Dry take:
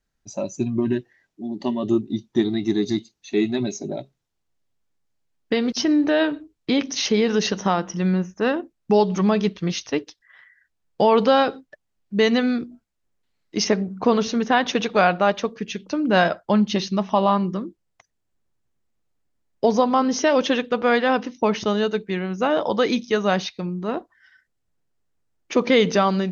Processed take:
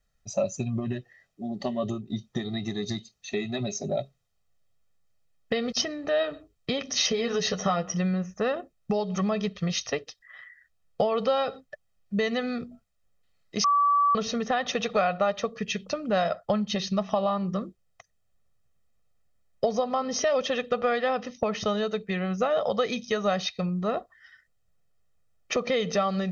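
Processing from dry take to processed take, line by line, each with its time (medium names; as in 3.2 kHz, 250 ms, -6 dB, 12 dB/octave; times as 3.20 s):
6.94–7.94 s: doubling 12 ms -4 dB
13.64–14.15 s: bleep 1.15 kHz -15.5 dBFS
whole clip: compression, threshold -24 dBFS; comb 1.6 ms, depth 76%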